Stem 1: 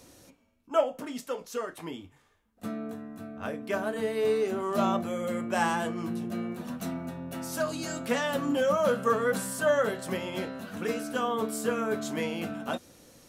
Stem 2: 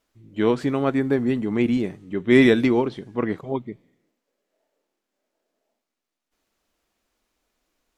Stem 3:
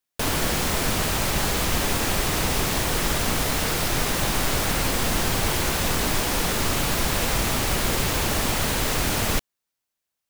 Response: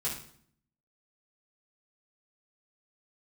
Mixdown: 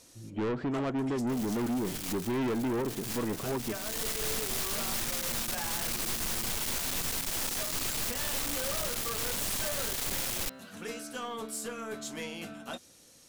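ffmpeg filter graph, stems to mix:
-filter_complex "[0:a]lowpass=11000,volume=-5.5dB[link_01];[1:a]lowpass=1200,acompressor=threshold=-28dB:ratio=2,volume=3dB,asplit=2[link_02][link_03];[2:a]aeval=exprs='max(val(0),0)':channel_layout=same,adelay=1100,volume=2.5dB[link_04];[link_03]apad=whole_len=502529[link_05];[link_04][link_05]sidechaincompress=threshold=-42dB:ratio=8:attack=8.3:release=360[link_06];[link_01][link_06]amix=inputs=2:normalize=0,aeval=exprs='(tanh(7.94*val(0)+0.6)-tanh(0.6))/7.94':channel_layout=same,alimiter=level_in=3dB:limit=-24dB:level=0:latency=1:release=296,volume=-3dB,volume=0dB[link_07];[link_02][link_07]amix=inputs=2:normalize=0,highshelf=frequency=2500:gain=12,asoftclip=type=tanh:threshold=-28dB"

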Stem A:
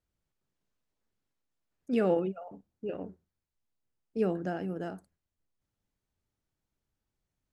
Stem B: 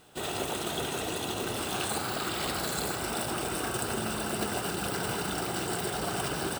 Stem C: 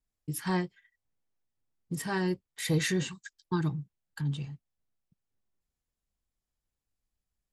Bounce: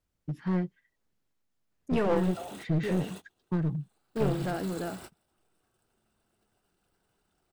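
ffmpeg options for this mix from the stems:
ffmpeg -i stem1.wav -i stem2.wav -i stem3.wav -filter_complex "[0:a]volume=3dB,asplit=2[link_01][link_02];[1:a]adelay=2000,volume=-13.5dB[link_03];[2:a]lowpass=2500,equalizer=frequency=200:width_type=o:width=1.8:gain=10,volume=-6dB[link_04];[link_02]apad=whole_len=378888[link_05];[link_03][link_05]sidechaingate=range=-31dB:threshold=-50dB:ratio=16:detection=peak[link_06];[link_01][link_06][link_04]amix=inputs=3:normalize=0,aeval=exprs='clip(val(0),-1,0.0422)':channel_layout=same" out.wav

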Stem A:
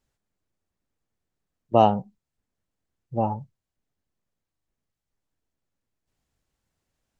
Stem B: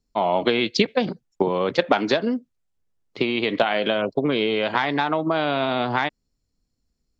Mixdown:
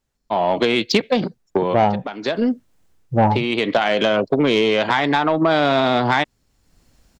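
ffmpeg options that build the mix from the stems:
ffmpeg -i stem1.wav -i stem2.wav -filter_complex "[0:a]volume=2dB,asplit=2[link_01][link_02];[1:a]adelay=150,volume=0.5dB[link_03];[link_02]apad=whole_len=323706[link_04];[link_03][link_04]sidechaincompress=threshold=-25dB:ratio=8:attack=9.3:release=1010[link_05];[link_01][link_05]amix=inputs=2:normalize=0,dynaudnorm=framelen=220:gausssize=3:maxgain=16dB,asoftclip=type=tanh:threshold=-7.5dB" out.wav

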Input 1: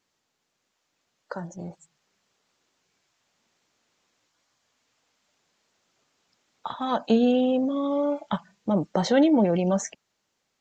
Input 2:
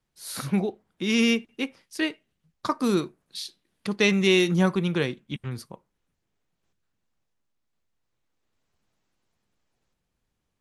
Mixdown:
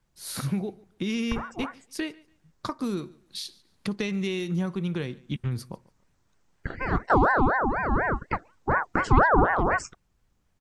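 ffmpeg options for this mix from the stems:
ffmpeg -i stem1.wav -i stem2.wav -filter_complex "[0:a]equalizer=frequency=3100:width_type=o:width=1.8:gain=-12.5,aeval=exprs='val(0)*sin(2*PI*910*n/s+910*0.45/4.1*sin(2*PI*4.1*n/s))':channel_layout=same,volume=1.5dB[link_01];[1:a]acompressor=threshold=-31dB:ratio=5,volume=0.5dB,asplit=2[link_02][link_03];[link_03]volume=-23.5dB,aecho=0:1:143|286|429|572:1|0.23|0.0529|0.0122[link_04];[link_01][link_02][link_04]amix=inputs=3:normalize=0,lowshelf=frequency=180:gain=10.5" out.wav

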